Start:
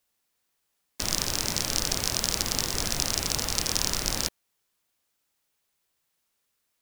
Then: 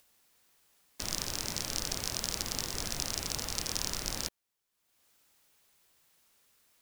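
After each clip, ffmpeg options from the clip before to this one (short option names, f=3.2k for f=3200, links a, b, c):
-af "acompressor=mode=upward:threshold=-46dB:ratio=2.5,volume=-7.5dB"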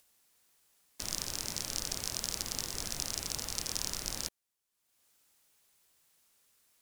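-af "equalizer=f=9.5k:t=o:w=1.6:g=4.5,volume=-4dB"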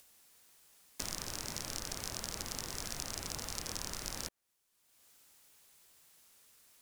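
-filter_complex "[0:a]acrossover=split=880|2100[a][b][c];[a]acompressor=threshold=-51dB:ratio=4[d];[b]acompressor=threshold=-57dB:ratio=4[e];[c]acompressor=threshold=-44dB:ratio=4[f];[d][e][f]amix=inputs=3:normalize=0,volume=6dB"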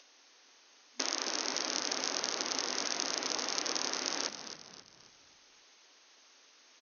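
-filter_complex "[0:a]afftfilt=real='re*between(b*sr/4096,240,6600)':imag='im*between(b*sr/4096,240,6600)':win_size=4096:overlap=0.75,asplit=6[a][b][c][d][e][f];[b]adelay=267,afreqshift=-52,volume=-10.5dB[g];[c]adelay=534,afreqshift=-104,volume=-17.6dB[h];[d]adelay=801,afreqshift=-156,volume=-24.8dB[i];[e]adelay=1068,afreqshift=-208,volume=-31.9dB[j];[f]adelay=1335,afreqshift=-260,volume=-39dB[k];[a][g][h][i][j][k]amix=inputs=6:normalize=0,volume=8dB"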